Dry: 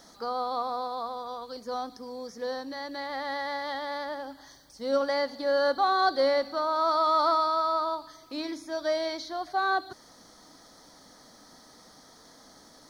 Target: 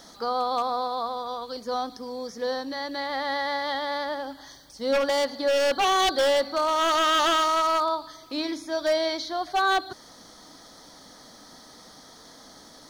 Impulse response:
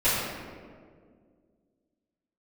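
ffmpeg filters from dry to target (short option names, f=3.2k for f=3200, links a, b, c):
-af "aeval=exprs='0.0841*(abs(mod(val(0)/0.0841+3,4)-2)-1)':c=same,equalizer=f=3.3k:w=2.3:g=4,volume=4.5dB"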